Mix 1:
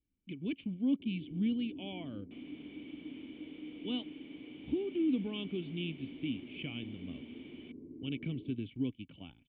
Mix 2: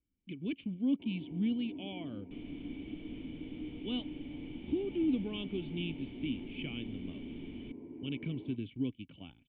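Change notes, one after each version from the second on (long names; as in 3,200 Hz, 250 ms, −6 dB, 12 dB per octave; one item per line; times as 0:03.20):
first sound: remove moving average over 53 samples
second sound: remove high-pass filter 350 Hz 12 dB per octave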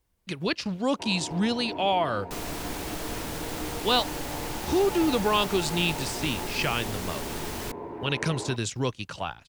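master: remove formant resonators in series i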